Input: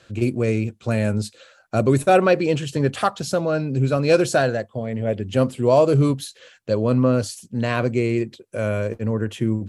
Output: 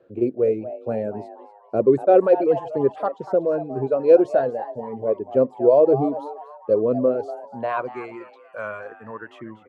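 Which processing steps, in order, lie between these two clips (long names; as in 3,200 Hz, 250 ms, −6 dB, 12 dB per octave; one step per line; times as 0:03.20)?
reverb reduction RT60 1.7 s
band-pass filter sweep 440 Hz → 1,200 Hz, 0:07.31–0:07.96
echo with shifted repeats 241 ms, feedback 38%, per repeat +150 Hz, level −13.5 dB
one half of a high-frequency compander decoder only
level +6 dB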